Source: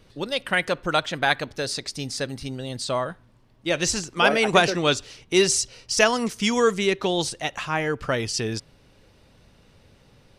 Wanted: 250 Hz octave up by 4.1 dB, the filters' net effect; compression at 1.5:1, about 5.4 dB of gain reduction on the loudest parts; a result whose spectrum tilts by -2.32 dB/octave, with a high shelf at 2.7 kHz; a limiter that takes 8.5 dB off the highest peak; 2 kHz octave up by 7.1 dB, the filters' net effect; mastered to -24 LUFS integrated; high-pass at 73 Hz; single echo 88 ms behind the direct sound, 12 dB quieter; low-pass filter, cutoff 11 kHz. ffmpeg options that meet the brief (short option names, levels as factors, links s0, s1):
-af "highpass=73,lowpass=11000,equalizer=f=250:t=o:g=5.5,equalizer=f=2000:t=o:g=5.5,highshelf=f=2700:g=8.5,acompressor=threshold=0.0708:ratio=1.5,alimiter=limit=0.282:level=0:latency=1,aecho=1:1:88:0.251,volume=0.944"